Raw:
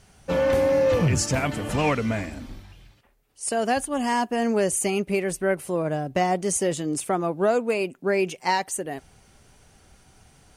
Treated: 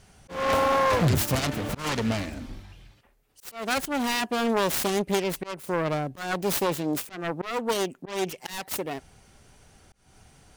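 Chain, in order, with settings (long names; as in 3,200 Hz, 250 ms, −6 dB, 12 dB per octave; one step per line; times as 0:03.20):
phase distortion by the signal itself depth 0.61 ms
volume swells 241 ms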